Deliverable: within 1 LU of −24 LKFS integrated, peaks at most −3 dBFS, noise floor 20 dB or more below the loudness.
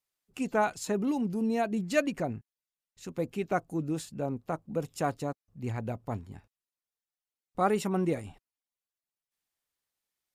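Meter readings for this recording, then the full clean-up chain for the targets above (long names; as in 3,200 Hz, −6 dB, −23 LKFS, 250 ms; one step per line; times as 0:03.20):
integrated loudness −32.0 LKFS; sample peak −13.5 dBFS; target loudness −24.0 LKFS
→ level +8 dB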